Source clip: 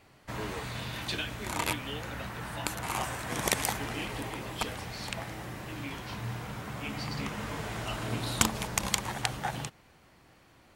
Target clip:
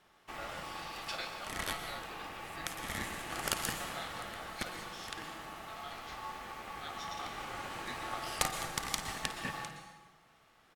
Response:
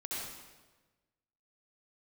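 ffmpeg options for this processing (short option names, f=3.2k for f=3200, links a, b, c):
-filter_complex "[0:a]highpass=73,aeval=exprs='val(0)*sin(2*PI*990*n/s)':c=same,asplit=2[a][b];[b]aecho=1:1:6.1:0.9[c];[1:a]atrim=start_sample=2205,adelay=51[d];[c][d]afir=irnorm=-1:irlink=0,volume=-10.5dB[e];[a][e]amix=inputs=2:normalize=0,volume=-3.5dB"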